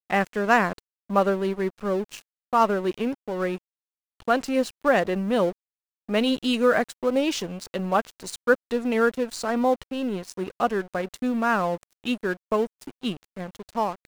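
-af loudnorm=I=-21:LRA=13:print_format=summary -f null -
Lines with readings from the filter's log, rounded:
Input Integrated:    -25.6 LUFS
Input True Peak:      -5.4 dBTP
Input LRA:             3.4 LU
Input Threshold:     -35.9 LUFS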